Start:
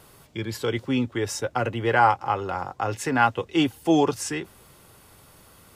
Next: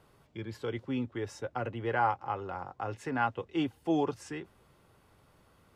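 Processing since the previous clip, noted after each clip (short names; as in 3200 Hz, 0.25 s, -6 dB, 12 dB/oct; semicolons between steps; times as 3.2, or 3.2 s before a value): LPF 2200 Hz 6 dB/oct; gain -9 dB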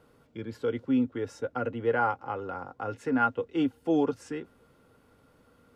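small resonant body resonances 260/470/1400 Hz, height 11 dB, ringing for 45 ms; gain -1.5 dB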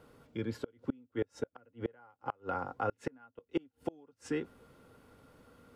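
flipped gate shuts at -22 dBFS, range -34 dB; gain +1.5 dB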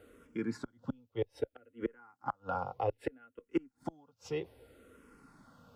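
endless phaser -0.63 Hz; gain +3 dB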